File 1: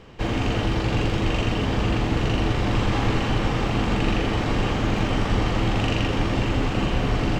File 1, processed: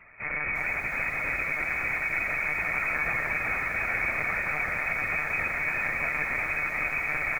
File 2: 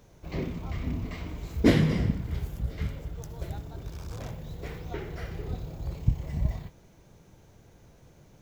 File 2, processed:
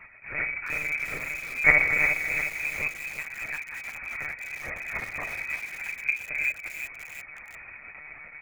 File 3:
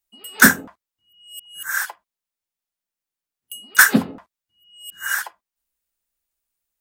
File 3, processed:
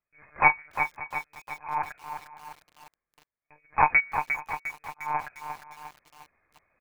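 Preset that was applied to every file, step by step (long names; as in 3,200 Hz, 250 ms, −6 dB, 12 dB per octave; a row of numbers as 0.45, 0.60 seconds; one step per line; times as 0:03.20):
lower of the sound and its delayed copy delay 3.7 ms
low-shelf EQ 81 Hz −9.5 dB
mains-hum notches 50/100/150/200/250/300/350/400 Hz
reversed playback
upward compression, threshold −42 dBFS
reversed playback
transient designer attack −8 dB, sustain −12 dB
in parallel at −7 dB: soft clipping −11.5 dBFS
on the sum: slap from a distant wall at 96 metres, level −18 dB
voice inversion scrambler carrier 2,500 Hz
one-pitch LPC vocoder at 8 kHz 150 Hz
feedback echo at a low word length 353 ms, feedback 55%, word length 7 bits, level −7.5 dB
loudness normalisation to −27 LKFS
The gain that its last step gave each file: −5.0, +6.0, −2.5 decibels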